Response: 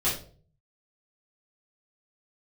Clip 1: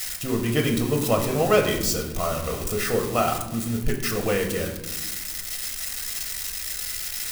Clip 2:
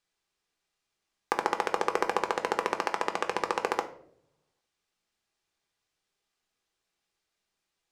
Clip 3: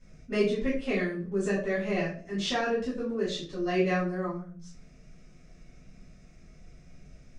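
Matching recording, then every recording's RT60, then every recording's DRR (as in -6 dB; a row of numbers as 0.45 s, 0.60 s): 3; 1.1 s, 0.65 s, 0.45 s; 2.5 dB, 4.5 dB, -10.5 dB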